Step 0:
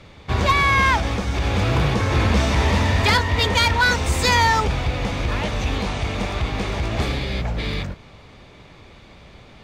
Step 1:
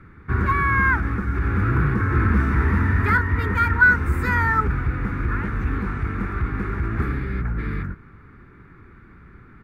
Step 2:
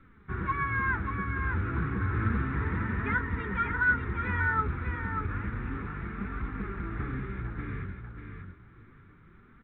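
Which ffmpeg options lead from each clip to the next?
-af "firequalizer=gain_entry='entry(370,0);entry(590,-21);entry(1400,7);entry(3100,-25);entry(6400,-26);entry(12000,-9)':delay=0.05:min_phase=1"
-filter_complex "[0:a]flanger=delay=3.6:depth=9.2:regen=35:speed=0.31:shape=triangular,asplit=2[s0][s1];[s1]aecho=0:1:590|1180|1770:0.501|0.0902|0.0162[s2];[s0][s2]amix=inputs=2:normalize=0,volume=0.473" -ar 8000 -c:a pcm_mulaw

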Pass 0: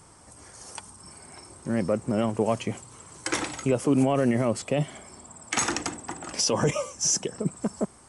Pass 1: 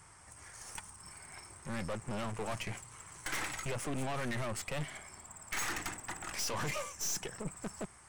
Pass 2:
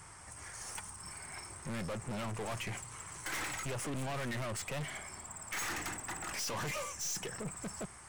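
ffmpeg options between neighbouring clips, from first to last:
-af "equalizer=f=250:t=o:w=1:g=-9,equalizer=f=500:t=o:w=1:g=-6,equalizer=f=2000:t=o:w=1:g=7,equalizer=f=4000:t=o:w=1:g=-4,aeval=exprs='(tanh(50.1*val(0)+0.7)-tanh(0.7))/50.1':c=same"
-af "asoftclip=type=tanh:threshold=0.0106,volume=1.78"

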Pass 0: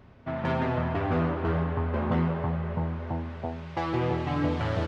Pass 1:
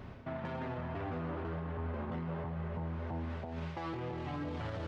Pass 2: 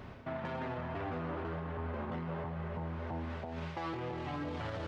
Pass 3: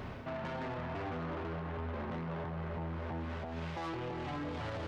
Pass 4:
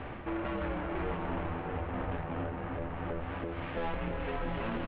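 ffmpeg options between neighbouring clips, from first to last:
-af "areverse,acompressor=threshold=0.0158:ratio=5,areverse,alimiter=level_in=4.47:limit=0.0631:level=0:latency=1:release=50,volume=0.224,volume=1.88"
-af "lowshelf=f=320:g=-4.5,volume=1.33"
-filter_complex "[0:a]asplit=2[s0][s1];[s1]alimiter=level_in=5.96:limit=0.0631:level=0:latency=1,volume=0.168,volume=1.19[s2];[s0][s2]amix=inputs=2:normalize=0,asoftclip=type=tanh:threshold=0.0178"
-af "aecho=1:1:640:0.398,highpass=f=240:t=q:w=0.5412,highpass=f=240:t=q:w=1.307,lowpass=f=3500:t=q:w=0.5176,lowpass=f=3500:t=q:w=0.7071,lowpass=f=3500:t=q:w=1.932,afreqshift=-320,volume=2"

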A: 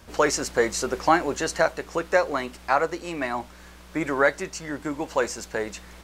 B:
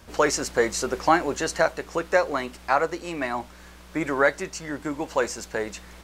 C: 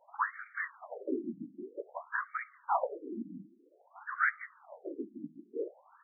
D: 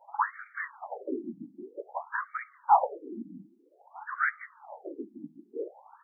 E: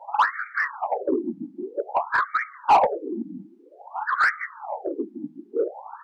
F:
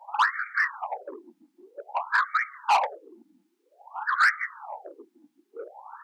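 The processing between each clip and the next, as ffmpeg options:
-af anull
-af "bandreject=f=124.9:t=h:w=4,bandreject=f=249.8:t=h:w=4,bandreject=f=374.7:t=h:w=4,bandreject=f=499.6:t=h:w=4,bandreject=f=624.5:t=h:w=4,bandreject=f=749.4:t=h:w=4,bandreject=f=874.3:t=h:w=4,bandreject=f=999.2:t=h:w=4,bandreject=f=1124.1:t=h:w=4,bandreject=f=1249:t=h:w=4,afftfilt=real='hypot(re,im)*cos(2*PI*random(0))':imag='hypot(re,im)*sin(2*PI*random(1))':win_size=512:overlap=0.75,afftfilt=real='re*between(b*sr/1024,230*pow(1700/230,0.5+0.5*sin(2*PI*0.52*pts/sr))/1.41,230*pow(1700/230,0.5+0.5*sin(2*PI*0.52*pts/sr))*1.41)':imag='im*between(b*sr/1024,230*pow(1700/230,0.5+0.5*sin(2*PI*0.52*pts/sr))/1.41,230*pow(1700/230,0.5+0.5*sin(2*PI*0.52*pts/sr))*1.41)':win_size=1024:overlap=0.75"
-af "equalizer=f=840:t=o:w=0.43:g=13.5"
-filter_complex "[0:a]asplit=2[s0][s1];[s1]highpass=f=720:p=1,volume=12.6,asoftclip=type=tanh:threshold=0.355[s2];[s0][s2]amix=inputs=2:normalize=0,lowpass=f=1300:p=1,volume=0.501,volume=1.26"
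-af "highpass=1100,highshelf=f=3700:g=6.5"

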